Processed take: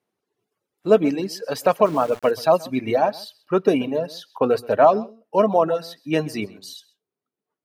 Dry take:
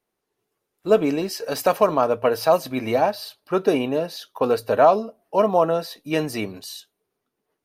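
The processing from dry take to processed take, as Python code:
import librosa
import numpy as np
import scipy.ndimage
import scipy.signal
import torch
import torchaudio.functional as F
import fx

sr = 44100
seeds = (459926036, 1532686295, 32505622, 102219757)

p1 = fx.low_shelf(x, sr, hz=320.0, db=5.5)
p2 = p1 + fx.echo_single(p1, sr, ms=130, db=-11.0, dry=0)
p3 = fx.dereverb_blind(p2, sr, rt60_s=1.6)
p4 = scipy.signal.sosfilt(scipy.signal.butter(2, 110.0, 'highpass', fs=sr, output='sos'), p3)
p5 = fx.high_shelf(p4, sr, hz=11000.0, db=-10.0)
y = fx.sample_gate(p5, sr, floor_db=-35.0, at=(1.85, 2.31))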